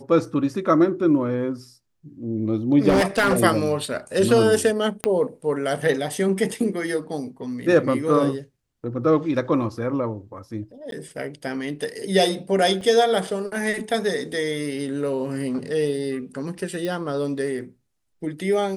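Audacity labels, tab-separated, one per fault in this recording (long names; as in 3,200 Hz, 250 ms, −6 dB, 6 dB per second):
2.880000	3.430000	clipping −14 dBFS
5.040000	5.040000	click −8 dBFS
10.910000	10.920000	drop-out 12 ms
12.810000	12.810000	drop-out 3.6 ms
16.850000	16.850000	click −16 dBFS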